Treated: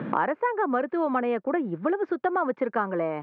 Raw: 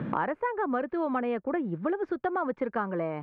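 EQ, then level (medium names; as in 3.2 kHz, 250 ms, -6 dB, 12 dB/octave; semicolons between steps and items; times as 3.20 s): Bessel high-pass 240 Hz, order 2; distance through air 100 m; +5.0 dB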